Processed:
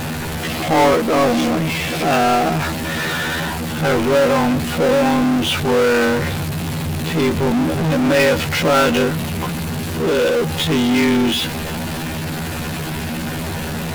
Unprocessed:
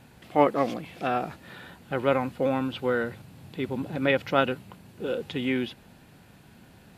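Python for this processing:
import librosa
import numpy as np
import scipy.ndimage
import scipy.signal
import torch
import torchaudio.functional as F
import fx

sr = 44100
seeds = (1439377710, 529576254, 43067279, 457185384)

y = fx.stretch_grains(x, sr, factor=2.0, grain_ms=50.0)
y = fx.power_curve(y, sr, exponent=0.35)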